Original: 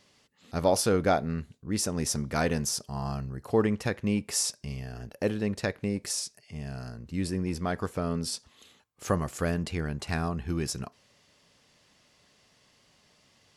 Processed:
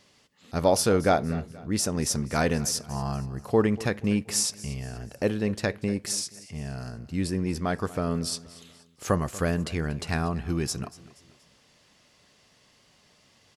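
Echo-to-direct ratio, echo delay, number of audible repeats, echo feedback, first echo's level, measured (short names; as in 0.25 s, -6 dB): -18.0 dB, 0.238 s, 3, 42%, -19.0 dB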